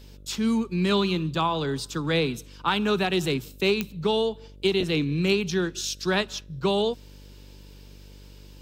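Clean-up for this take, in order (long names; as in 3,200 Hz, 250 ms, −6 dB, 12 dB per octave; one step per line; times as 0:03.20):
click removal
hum removal 48.9 Hz, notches 12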